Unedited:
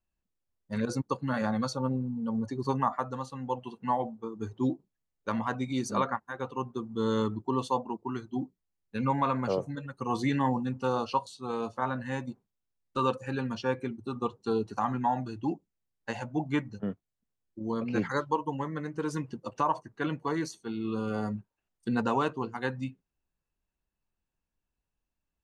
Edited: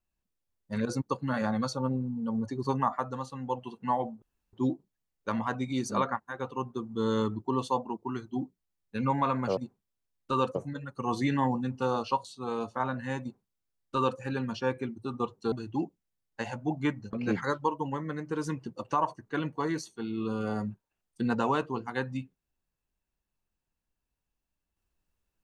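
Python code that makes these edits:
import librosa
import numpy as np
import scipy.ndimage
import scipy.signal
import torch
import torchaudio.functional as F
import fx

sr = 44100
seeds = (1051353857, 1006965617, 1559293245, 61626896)

y = fx.edit(x, sr, fx.room_tone_fill(start_s=4.22, length_s=0.31),
    fx.duplicate(start_s=12.23, length_s=0.98, to_s=9.57),
    fx.cut(start_s=14.54, length_s=0.67),
    fx.cut(start_s=16.82, length_s=0.98), tone=tone)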